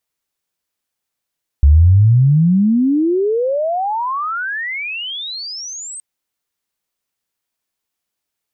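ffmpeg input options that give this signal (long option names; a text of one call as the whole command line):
ffmpeg -f lavfi -i "aevalsrc='pow(10,(-4.5-22.5*t/4.37)/20)*sin(2*PI*68*4.37/log(8500/68)*(exp(log(8500/68)*t/4.37)-1))':duration=4.37:sample_rate=44100" out.wav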